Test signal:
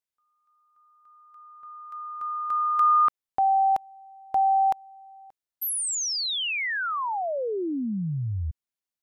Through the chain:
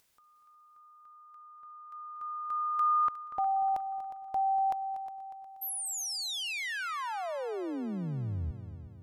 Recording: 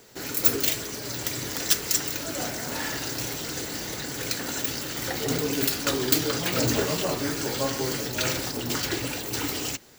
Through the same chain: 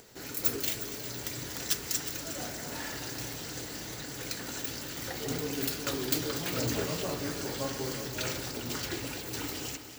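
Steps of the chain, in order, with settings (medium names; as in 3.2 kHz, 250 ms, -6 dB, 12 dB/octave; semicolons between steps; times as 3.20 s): bass shelf 110 Hz +4 dB; upward compressor, threshold -41 dBFS; on a send: multi-head delay 120 ms, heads second and third, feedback 52%, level -13 dB; on the sum: trim -8 dB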